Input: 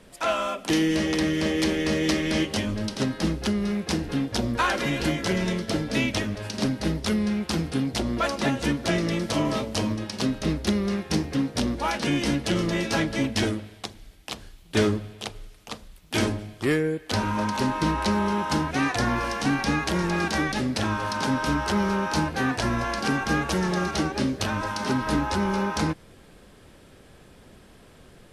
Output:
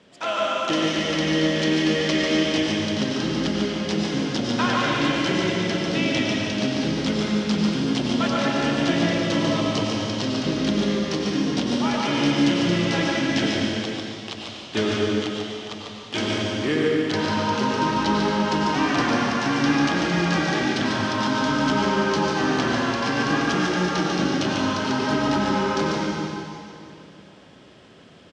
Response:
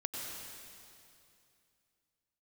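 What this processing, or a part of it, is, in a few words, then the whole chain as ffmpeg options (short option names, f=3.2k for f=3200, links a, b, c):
PA in a hall: -filter_complex "[0:a]highpass=130,equalizer=f=3.1k:t=o:w=0.3:g=5,aecho=1:1:145:0.562[a];[1:a]atrim=start_sample=2205[b];[a][b]afir=irnorm=-1:irlink=0,lowpass=f=6.7k:w=0.5412,lowpass=f=6.7k:w=1.3066"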